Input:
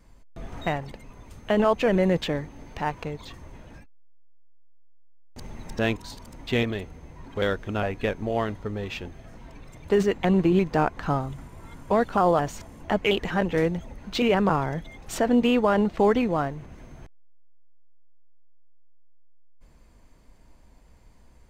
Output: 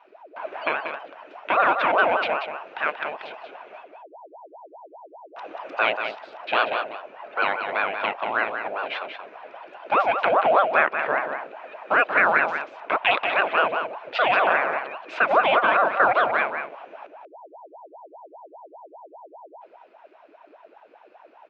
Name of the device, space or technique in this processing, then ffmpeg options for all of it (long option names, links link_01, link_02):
voice changer toy: -filter_complex "[0:a]asettb=1/sr,asplit=3[link_01][link_02][link_03];[link_01]atrim=end=10.444[link_04];[link_02]atrim=start=10.44:end=11.29,asetpts=PTS-STARTPTS,afade=type=in:duration=0.004:curve=qsin,afade=type=out:start_time=0.846:duration=0.004:curve=qsin,aemphasis=mode=reproduction:type=50fm[link_05];[link_03]atrim=start=11.286[link_06];[link_04][link_05]acrossfade=duration=0.004:curve1=hsin:curve2=qsin[link_07];[link_07][link_06]acrossfade=duration=0.004:curve1=qsin:curve2=hsin,aeval=exprs='val(0)*sin(2*PI*640*n/s+640*0.55/5*sin(2*PI*5*n/s))':channel_layout=same,highpass=470,equalizer=frequency=640:width_type=q:width=4:gain=7,equalizer=frequency=1500:width_type=q:width=4:gain=7,equalizer=frequency=2500:width_type=q:width=4:gain=10,lowpass=frequency=3700:width=0.5412,lowpass=frequency=3700:width=1.3066,aecho=1:1:185:0.422,volume=2.5dB"